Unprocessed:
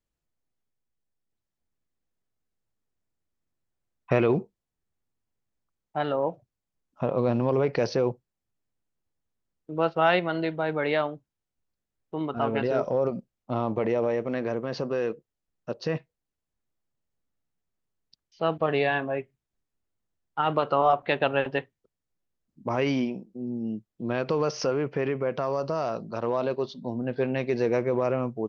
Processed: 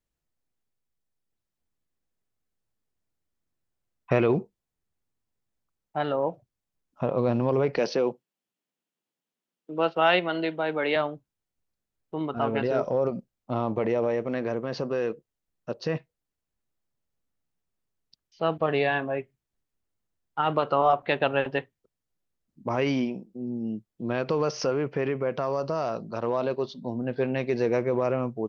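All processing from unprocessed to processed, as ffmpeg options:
ffmpeg -i in.wav -filter_complex "[0:a]asettb=1/sr,asplit=3[link_01][link_02][link_03];[link_01]atrim=end=7.774[link_04];[link_02]atrim=start=7.77:end=10.96,asetpts=PTS-STARTPTS,afade=type=in:duration=0.004:curve=qsin,afade=type=out:start_time=3.186:duration=0.004:curve=qsin,highpass=frequency=180:width=0.5412,highpass=frequency=180:width=1.3066,equalizer=frequency=3000:width_type=o:width=0.58:gain=5.5[link_05];[link_03]atrim=start=10.956[link_06];[link_04][link_05]acrossfade=duration=0.004:curve1=hsin:curve2=qsin[link_07];[link_07][link_06]acrossfade=duration=0.004:curve1=qsin:curve2=hsin" out.wav

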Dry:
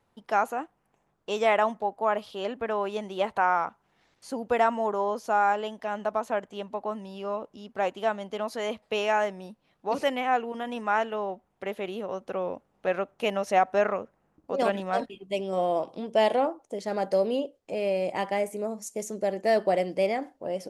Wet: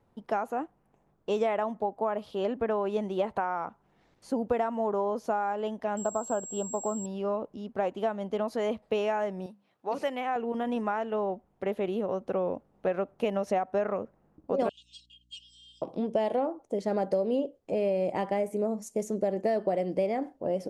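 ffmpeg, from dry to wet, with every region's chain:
ffmpeg -i in.wav -filter_complex "[0:a]asettb=1/sr,asplit=3[link_01][link_02][link_03];[link_01]atrim=end=5.974[link_04];[link_02]atrim=start=5.97:end=7.06,asetpts=PTS-STARTPTS,afade=type=in:duration=0.004:curve=qsin,afade=type=out:start_time=1.086:duration=0.004:curve=qsin,aeval=exprs='val(0)+0.0251*sin(2*PI*7600*n/s)':channel_layout=same,asuperstop=centerf=2100:order=8:qfactor=1.9[link_05];[link_03]atrim=start=7.056[link_06];[link_04][link_05]acrossfade=duration=0.004:curve1=hsin:curve2=qsin[link_07];[link_07][link_06]acrossfade=duration=0.004:curve1=qsin:curve2=hsin,asettb=1/sr,asplit=3[link_08][link_09][link_10];[link_08]atrim=end=9.464[link_11];[link_09]atrim=start=9.46:end=10.36,asetpts=PTS-STARTPTS,afade=type=in:duration=0.004:curve=qsin,afade=type=out:start_time=0.896:duration=0.004:curve=qsin,highpass=80,lowshelf=frequency=490:gain=-10.5,bandreject=frequency=50:width_type=h:width=6,bandreject=frequency=100:width_type=h:width=6,bandreject=frequency=150:width_type=h:width=6,bandreject=frequency=200:width_type=h:width=6[link_12];[link_10]atrim=start=10.356[link_13];[link_11][link_12]acrossfade=duration=0.004:curve1=hsin:curve2=qsin[link_14];[link_14][link_13]acrossfade=duration=0.004:curve1=qsin:curve2=hsin,asettb=1/sr,asplit=3[link_15][link_16][link_17];[link_15]atrim=end=14.694[link_18];[link_16]atrim=start=14.69:end=15.82,asetpts=PTS-STARTPTS,afade=type=in:duration=0.004:curve=qsin,afade=type=out:start_time=1.126:duration=0.004:curve=qsin,asuperpass=centerf=5100:order=20:qfactor=0.9,aecho=1:1:2.8:0.79,atrim=end_sample=49833,aeval=exprs='val(0)+0.0002*(sin(2*PI*60*n/s)+sin(2*PI*2*60*n/s)/2+sin(2*PI*3*60*n/s)/3+sin(2*PI*4*60*n/s)/4+sin(2*PI*5*60*n/s)/5)':channel_layout=same[link_19];[link_17]atrim=start=15.816[link_20];[link_18][link_19]acrossfade=duration=0.004:curve1=hsin:curve2=qsin[link_21];[link_21][link_20]acrossfade=duration=0.004:curve1=qsin:curve2=hsin,acompressor=threshold=-27dB:ratio=6,tiltshelf=frequency=970:gain=6" out.wav

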